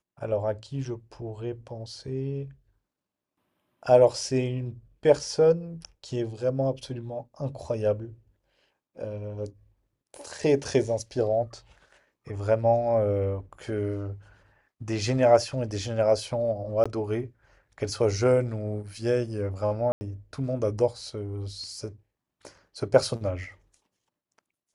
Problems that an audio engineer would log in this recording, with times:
0:16.84–0:16.86: drop-out 16 ms
0:19.92–0:20.01: drop-out 90 ms

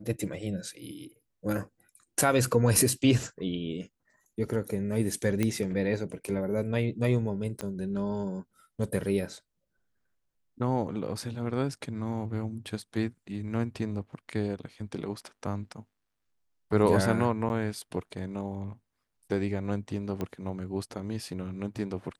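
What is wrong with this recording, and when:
0:05.43: click −14 dBFS
0:07.61: click −20 dBFS
0:17.49–0:17.50: drop-out 9.7 ms
0:20.21: click −20 dBFS

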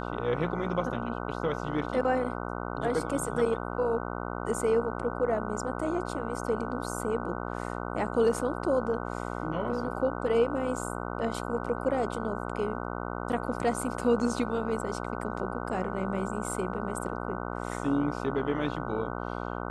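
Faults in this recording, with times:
mains buzz 60 Hz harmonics 25 −35 dBFS

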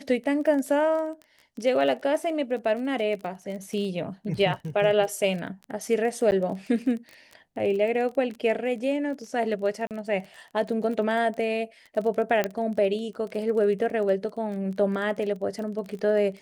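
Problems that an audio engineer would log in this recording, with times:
surface crackle 22 per second −33 dBFS
0:06.31–0:06.32: drop-out 9.7 ms
0:09.87–0:09.91: drop-out 38 ms
0:12.44: click −11 dBFS

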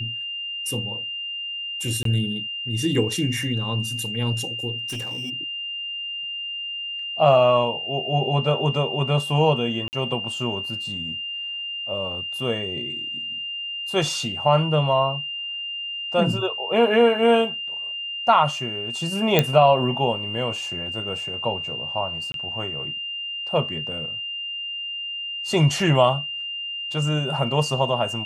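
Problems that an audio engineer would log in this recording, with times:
whistle 2,800 Hz −28 dBFS
0:02.03–0:02.05: drop-out 23 ms
0:04.78–0:05.31: clipping −26.5 dBFS
0:09.88–0:09.93: drop-out 49 ms
0:19.39: click −2 dBFS
0:22.32–0:22.34: drop-out 22 ms

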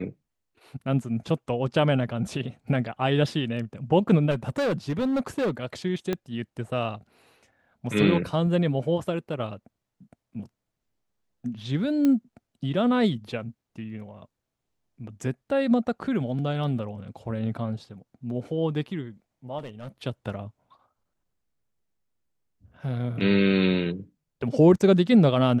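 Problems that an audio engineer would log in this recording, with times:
0:04.30–0:05.51: clipping −21.5 dBFS
0:06.13: click −14 dBFS
0:12.05: click −13 dBFS
0:19.58–0:19.89: clipping −33.5 dBFS

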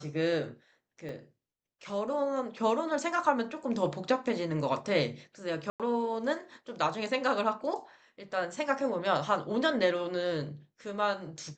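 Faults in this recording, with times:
0:01.09: drop-out 2.2 ms
0:05.70–0:05.80: drop-out 97 ms

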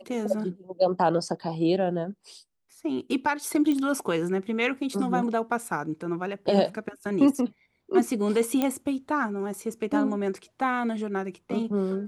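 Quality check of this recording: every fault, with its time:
0:03.72: click −17 dBFS
0:08.62: click −12 dBFS

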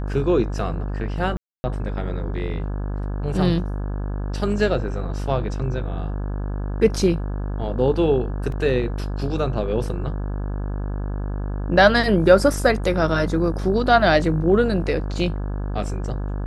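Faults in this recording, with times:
mains buzz 50 Hz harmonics 34 −26 dBFS
0:01.37–0:01.64: drop-out 270 ms
0:08.52: drop-out 2.7 ms

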